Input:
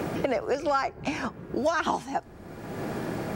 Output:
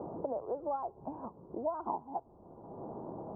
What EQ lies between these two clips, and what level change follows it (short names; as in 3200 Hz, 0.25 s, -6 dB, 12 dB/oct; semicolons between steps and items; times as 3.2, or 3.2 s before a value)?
elliptic low-pass 990 Hz, stop band 50 dB; low shelf 460 Hz -10 dB; -4.5 dB